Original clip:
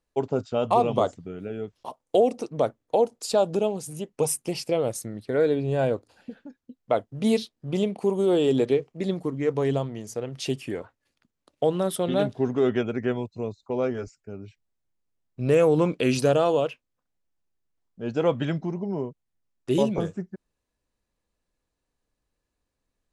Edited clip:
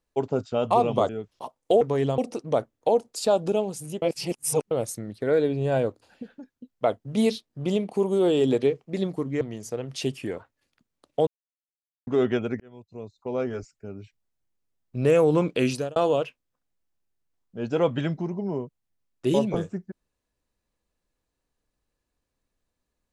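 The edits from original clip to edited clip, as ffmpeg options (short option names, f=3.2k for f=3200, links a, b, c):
-filter_complex "[0:a]asplit=11[a][b][c][d][e][f][g][h][i][j][k];[a]atrim=end=1.092[l];[b]atrim=start=1.528:end=2.252[m];[c]atrim=start=9.478:end=9.852[n];[d]atrim=start=2.248:end=4.092[o];[e]atrim=start=4.088:end=4.782,asetpts=PTS-STARTPTS,areverse[p];[f]atrim=start=4.778:end=9.482[q];[g]atrim=start=9.848:end=11.71,asetpts=PTS-STARTPTS,afade=t=out:st=1.858:d=0.004:c=hsin[r];[h]atrim=start=11.71:end=12.51,asetpts=PTS-STARTPTS,volume=0[s];[i]atrim=start=12.51:end=13.04,asetpts=PTS-STARTPTS,afade=t=in:d=0.004:c=hsin,afade=t=out:st=0.526:d=0.004:c=hsin[t];[j]atrim=start=13.04:end=16.4,asetpts=PTS-STARTPTS,afade=t=in:d=0.99,afade=t=out:st=3.02:d=0.34[u];[k]atrim=start=16.4,asetpts=PTS-STARTPTS,afade=t=in:d=0.004:c=hsin[v];[l][m]acrossfade=d=0.004:c1=hsin:c2=hsin[w];[w][n]acrossfade=d=0.004:c1=hsin:c2=hsin[x];[x][o]acrossfade=d=0.004:c1=hsin:c2=hsin[y];[y][p]acrossfade=d=0.004:c1=hsin:c2=hsin[z];[z][q]acrossfade=d=0.004:c1=hsin:c2=hsin[aa];[r][s][t][u][v]concat=n=5:v=0:a=1[ab];[aa][ab]acrossfade=d=0.004:c1=hsin:c2=hsin"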